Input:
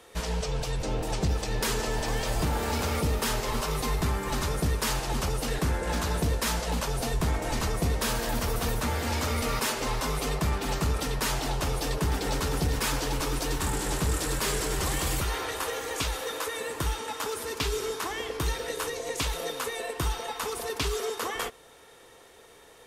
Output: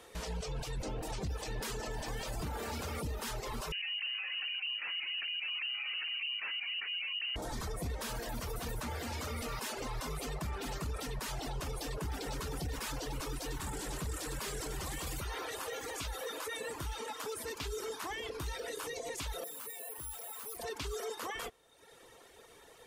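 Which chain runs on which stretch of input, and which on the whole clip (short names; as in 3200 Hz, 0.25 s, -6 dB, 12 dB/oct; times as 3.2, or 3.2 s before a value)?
3.72–7.36 tilt shelf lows +8 dB, about 1400 Hz + inverted band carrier 2900 Hz + HPF 740 Hz 6 dB/oct
19.44–20.58 LPF 6100 Hz + careless resampling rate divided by 4×, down none, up zero stuff
whole clip: reverb removal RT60 0.87 s; limiter -29.5 dBFS; gain -2 dB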